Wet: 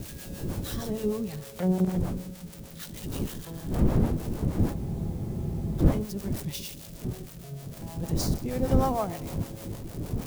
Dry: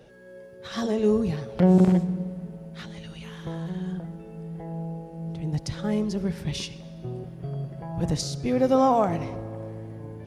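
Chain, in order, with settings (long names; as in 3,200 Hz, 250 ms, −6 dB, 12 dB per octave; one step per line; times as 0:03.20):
spike at every zero crossing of −23.5 dBFS
wind on the microphone 210 Hz −23 dBFS
two-band tremolo in antiphase 6.5 Hz, depth 70%, crossover 490 Hz
frozen spectrum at 0:04.77, 1.03 s
level −4.5 dB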